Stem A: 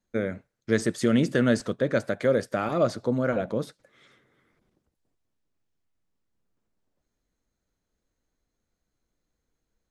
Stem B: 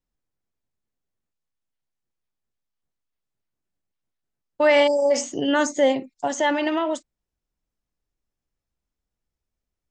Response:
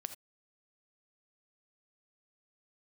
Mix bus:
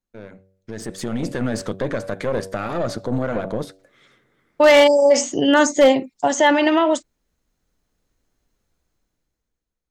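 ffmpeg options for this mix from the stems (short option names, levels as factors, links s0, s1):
-filter_complex "[0:a]bandreject=f=95.45:t=h:w=4,bandreject=f=190.9:t=h:w=4,bandreject=f=286.35:t=h:w=4,bandreject=f=381.8:t=h:w=4,bandreject=f=477.25:t=h:w=4,bandreject=f=572.7:t=h:w=4,bandreject=f=668.15:t=h:w=4,bandreject=f=763.6:t=h:w=4,alimiter=limit=0.1:level=0:latency=1:release=50,aeval=exprs='(tanh(15.8*val(0)+0.65)-tanh(0.65))/15.8':c=same,volume=0.501[s0];[1:a]volume=0.501[s1];[s0][s1]amix=inputs=2:normalize=0,dynaudnorm=f=110:g=17:m=5.96,aeval=exprs='0.562*(abs(mod(val(0)/0.562+3,4)-2)-1)':c=same"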